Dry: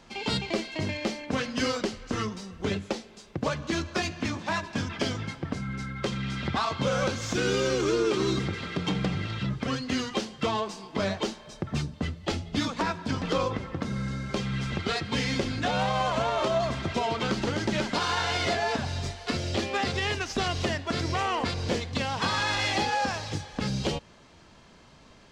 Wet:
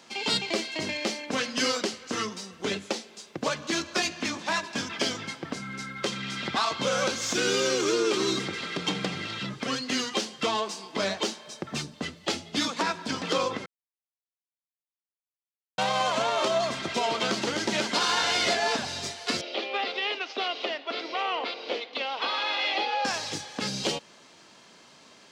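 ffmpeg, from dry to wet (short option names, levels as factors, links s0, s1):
-filter_complex "[0:a]asettb=1/sr,asplit=3[s0][s1][s2];[s0]atrim=end=16.334[s3];[s1]atrim=start=16.33:end=18.79,asetpts=PTS-STARTPTS,afade=t=in:d=0.004:c=qsin,afade=t=out:st=2.456:d=0.004:c=qsin,aecho=1:1:704:0.224,atrim=end_sample=108486[s4];[s2]atrim=start=18.786[s5];[s3][s4]acrossfade=d=0.004:c1=hsin:c2=qsin[s6];[s6][s5]acrossfade=d=0.004:c1=qsin:c2=hsin,asettb=1/sr,asplit=3[s7][s8][s9];[s7]atrim=end=19.414[s10];[s8]atrim=start=19.41:end=23.05,asetpts=PTS-STARTPTS,afade=t=in:d=0.004:c=qsin,afade=t=out:st=3.636:d=0.004:c=qsin,highpass=f=330:w=0.5412,highpass=f=330:w=1.3066,equalizer=f=360:t=q:w=4:g=-4,equalizer=f=1000:t=q:w=4:g=-4,equalizer=f=1700:t=q:w=4:g=-9,lowpass=f=3600:w=0.5412,lowpass=f=3600:w=1.3066[s11];[s9]atrim=start=23.046[s12];[s10][s11]acrossfade=d=0.004:c1=hsin:c2=qsin[s13];[s13][s12]acrossfade=d=0.004:c1=qsin:c2=hsin,asplit=3[s14][s15][s16];[s14]atrim=end=13.66,asetpts=PTS-STARTPTS,afade=t=out:st=13.656:d=0.004:c=hsin[s17];[s15]atrim=start=13.66:end=15.78,asetpts=PTS-STARTPTS,volume=0[s18];[s16]atrim=start=15.78,asetpts=PTS-STARTPTS,afade=t=in:d=0.004:c=hsin[s19];[s17][s18][s19]concat=n=3:v=0:a=1,highpass=230,highshelf=f=2800:g=8"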